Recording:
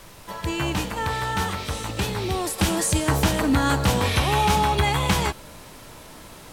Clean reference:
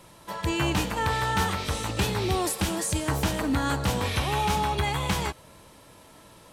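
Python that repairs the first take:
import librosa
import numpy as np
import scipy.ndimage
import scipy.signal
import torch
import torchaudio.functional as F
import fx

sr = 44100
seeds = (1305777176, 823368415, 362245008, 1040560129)

y = fx.noise_reduce(x, sr, print_start_s=5.98, print_end_s=6.48, reduce_db=8.0)
y = fx.gain(y, sr, db=fx.steps((0.0, 0.0), (2.58, -5.5)))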